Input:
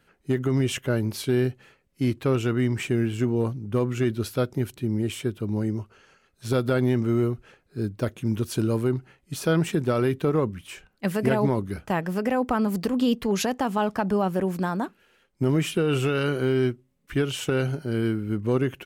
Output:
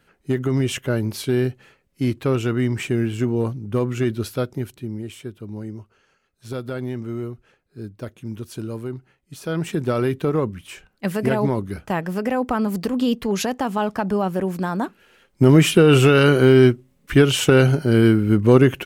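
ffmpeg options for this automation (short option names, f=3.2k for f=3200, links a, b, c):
-af "volume=19dB,afade=t=out:st=4.16:d=0.9:silence=0.375837,afade=t=in:st=9.42:d=0.44:silence=0.398107,afade=t=in:st=14.67:d=0.92:silence=0.375837"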